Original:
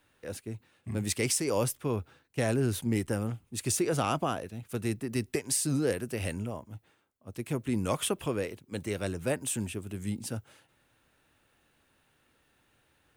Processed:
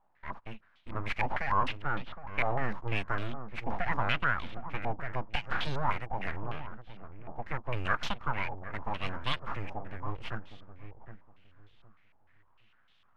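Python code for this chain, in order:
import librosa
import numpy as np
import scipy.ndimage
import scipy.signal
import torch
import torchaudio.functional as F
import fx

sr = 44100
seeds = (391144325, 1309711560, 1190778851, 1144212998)

y = np.abs(x)
y = fx.peak_eq(y, sr, hz=390.0, db=-8.5, octaves=1.2)
y = fx.echo_filtered(y, sr, ms=763, feedback_pct=26, hz=850.0, wet_db=-9.0)
y = fx.filter_held_lowpass(y, sr, hz=6.6, low_hz=830.0, high_hz=3400.0)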